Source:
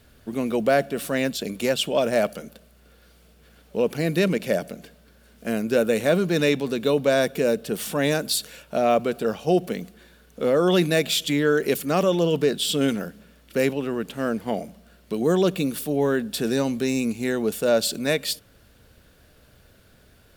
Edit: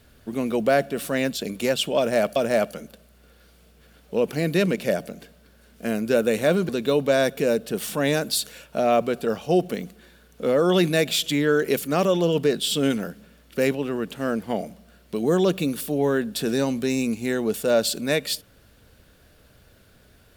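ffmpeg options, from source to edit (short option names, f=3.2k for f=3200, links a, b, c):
-filter_complex "[0:a]asplit=3[a][b][c];[a]atrim=end=2.362[d];[b]atrim=start=1.978:end=6.312[e];[c]atrim=start=6.668[f];[d][e]acrossfade=d=0.004:c1=hsin:c2=hsin[g];[g][f]acrossfade=d=0.004:c1=hsin:c2=hsin"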